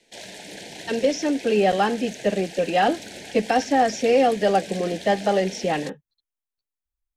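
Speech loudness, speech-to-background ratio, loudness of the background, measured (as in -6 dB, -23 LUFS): -22.5 LUFS, 15.0 dB, -37.5 LUFS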